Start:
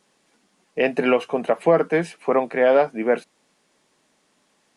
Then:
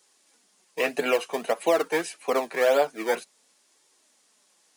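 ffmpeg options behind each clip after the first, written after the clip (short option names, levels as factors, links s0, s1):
-filter_complex "[0:a]bass=f=250:g=-12,treble=f=4000:g=11,acrossover=split=480[s0][s1];[s0]acrusher=samples=22:mix=1:aa=0.000001:lfo=1:lforange=22:lforate=1.7[s2];[s2][s1]amix=inputs=2:normalize=0,flanger=delay=2.1:depth=4.9:regen=-40:speed=0.52:shape=triangular"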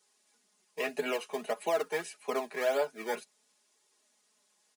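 -af "aecho=1:1:4.8:0.65,volume=0.355"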